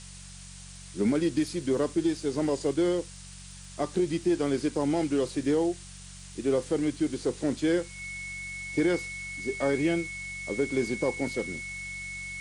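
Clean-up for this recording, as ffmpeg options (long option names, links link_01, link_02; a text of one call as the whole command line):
ffmpeg -i in.wav -af "adeclick=threshold=4,bandreject=frequency=46.5:width_type=h:width=4,bandreject=frequency=93:width_type=h:width=4,bandreject=frequency=139.5:width_type=h:width=4,bandreject=frequency=186:width_type=h:width=4,bandreject=frequency=2200:width=30,afftdn=noise_reduction=28:noise_floor=-45" out.wav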